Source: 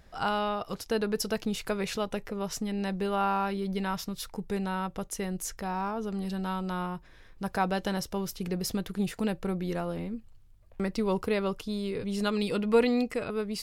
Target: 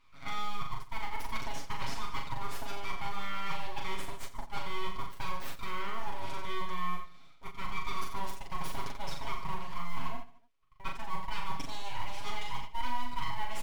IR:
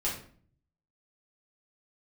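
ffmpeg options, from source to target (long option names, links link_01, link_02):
-filter_complex "[0:a]asplit=3[link_01][link_02][link_03];[link_01]bandpass=frequency=530:width_type=q:width=8,volume=0dB[link_04];[link_02]bandpass=frequency=1840:width_type=q:width=8,volume=-6dB[link_05];[link_03]bandpass=frequency=2480:width_type=q:width=8,volume=-9dB[link_06];[link_04][link_05][link_06]amix=inputs=3:normalize=0,aemphasis=mode=production:type=bsi,areverse,acompressor=threshold=-48dB:ratio=12,areverse,aeval=exprs='abs(val(0))':channel_layout=same,acrusher=bits=6:mode=log:mix=0:aa=0.000001,aecho=1:1:40|88|145.6|214.7|297.7:0.631|0.398|0.251|0.158|0.1,agate=range=-8dB:threshold=-51dB:ratio=16:detection=peak,highshelf=frequency=6100:gain=-7,aecho=1:1:7.3:0.75,volume=15dB"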